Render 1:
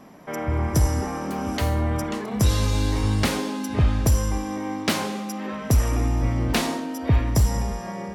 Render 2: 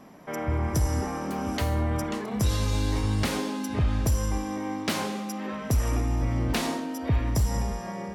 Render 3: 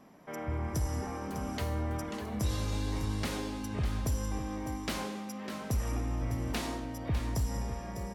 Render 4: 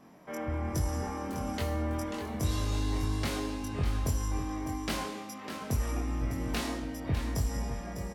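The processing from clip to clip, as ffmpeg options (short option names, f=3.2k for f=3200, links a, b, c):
-af "alimiter=limit=-14.5dB:level=0:latency=1:release=90,volume=-2.5dB"
-af "aecho=1:1:602:0.335,volume=-7.5dB"
-filter_complex "[0:a]asplit=2[a][b];[b]adelay=22,volume=-3dB[c];[a][c]amix=inputs=2:normalize=0"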